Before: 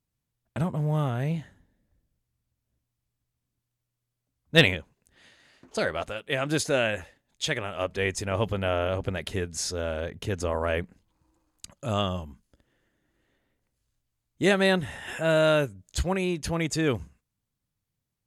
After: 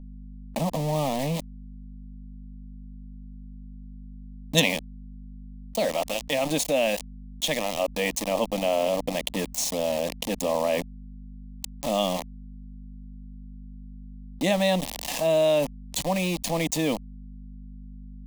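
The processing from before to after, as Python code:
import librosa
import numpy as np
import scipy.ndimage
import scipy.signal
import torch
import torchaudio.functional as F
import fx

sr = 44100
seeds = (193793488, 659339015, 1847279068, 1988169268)

y = fx.tracing_dist(x, sr, depth_ms=0.04)
y = scipy.signal.sosfilt(scipy.signal.butter(2, 190.0, 'highpass', fs=sr, output='sos'), y)
y = fx.high_shelf(y, sr, hz=5600.0, db=-3.5)
y = fx.notch(y, sr, hz=4900.0, q=5.4)
y = fx.bass_treble(y, sr, bass_db=9, treble_db=11, at=(1.39, 4.59), fade=0.02)
y = np.where(np.abs(y) >= 10.0 ** (-33.5 / 20.0), y, 0.0)
y = fx.add_hum(y, sr, base_hz=50, snr_db=31)
y = fx.fixed_phaser(y, sr, hz=390.0, stages=6)
y = fx.env_flatten(y, sr, amount_pct=50)
y = F.gain(torch.from_numpy(y), -1.5).numpy()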